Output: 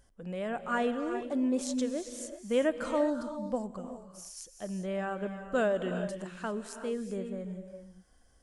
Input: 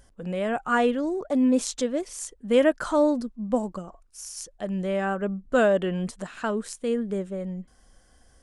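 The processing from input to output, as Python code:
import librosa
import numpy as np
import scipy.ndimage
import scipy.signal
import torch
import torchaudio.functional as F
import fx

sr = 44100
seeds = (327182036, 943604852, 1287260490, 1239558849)

y = fx.rev_gated(x, sr, seeds[0], gate_ms=420, shape='rising', drr_db=8.0)
y = F.gain(torch.from_numpy(y), -8.0).numpy()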